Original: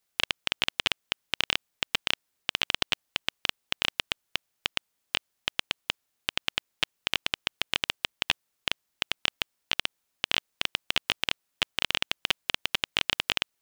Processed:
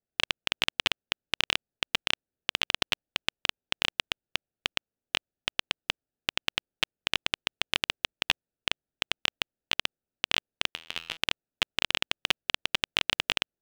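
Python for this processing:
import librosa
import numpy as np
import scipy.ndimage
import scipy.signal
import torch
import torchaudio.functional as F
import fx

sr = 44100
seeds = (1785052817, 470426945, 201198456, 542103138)

y = fx.wiener(x, sr, points=41)
y = fx.comb_fb(y, sr, f0_hz=82.0, decay_s=0.65, harmonics='all', damping=0.0, mix_pct=70, at=(10.69, 11.17))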